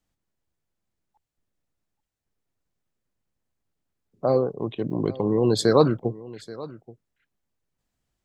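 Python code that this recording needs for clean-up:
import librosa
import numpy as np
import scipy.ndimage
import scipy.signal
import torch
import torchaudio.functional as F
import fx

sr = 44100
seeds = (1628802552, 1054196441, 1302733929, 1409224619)

y = fx.fix_interpolate(x, sr, at_s=(4.9, 5.99), length_ms=4.4)
y = fx.fix_echo_inverse(y, sr, delay_ms=830, level_db=-19.0)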